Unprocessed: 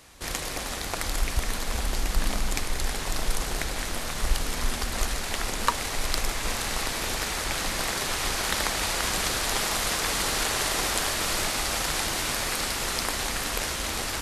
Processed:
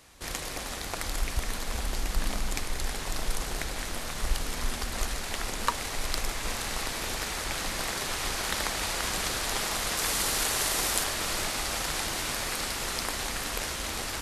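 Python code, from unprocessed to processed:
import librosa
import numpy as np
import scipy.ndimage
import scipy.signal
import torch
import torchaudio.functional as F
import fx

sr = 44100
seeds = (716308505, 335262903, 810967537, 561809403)

y = fx.high_shelf(x, sr, hz=7200.0, db=7.5, at=(9.97, 11.04))
y = y * librosa.db_to_amplitude(-3.5)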